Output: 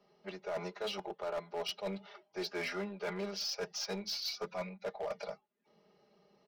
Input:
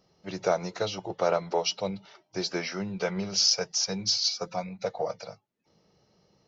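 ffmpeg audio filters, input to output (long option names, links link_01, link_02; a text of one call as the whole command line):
ffmpeg -i in.wav -filter_complex "[0:a]acrossover=split=300[link_01][link_02];[link_01]asoftclip=type=tanh:threshold=-39.5dB[link_03];[link_03][link_02]amix=inputs=2:normalize=0,acrossover=split=220 3900:gain=0.224 1 0.126[link_04][link_05][link_06];[link_04][link_05][link_06]amix=inputs=3:normalize=0,aecho=1:1:4.9:0.86,areverse,acompressor=threshold=-33dB:ratio=16,areverse,aeval=exprs='0.0668*(cos(1*acos(clip(val(0)/0.0668,-1,1)))-cos(1*PI/2))+0.00133*(cos(4*acos(clip(val(0)/0.0668,-1,1)))-cos(4*PI/2))+0.00299*(cos(7*acos(clip(val(0)/0.0668,-1,1)))-cos(7*PI/2))':channel_layout=same,asoftclip=type=hard:threshold=-33dB,volume=1dB" out.wav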